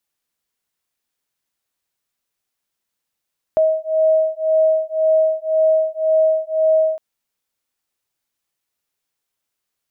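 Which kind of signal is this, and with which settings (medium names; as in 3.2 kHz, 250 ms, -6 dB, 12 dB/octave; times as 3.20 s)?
beating tones 633 Hz, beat 1.9 Hz, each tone -16.5 dBFS 3.41 s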